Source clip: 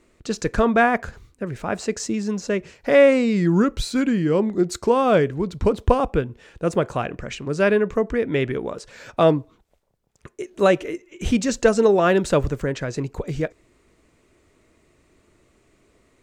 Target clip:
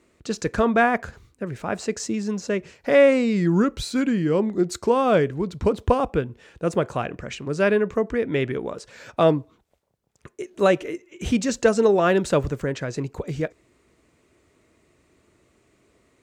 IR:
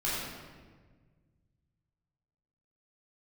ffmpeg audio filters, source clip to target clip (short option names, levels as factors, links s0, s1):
-af "highpass=57,volume=0.841"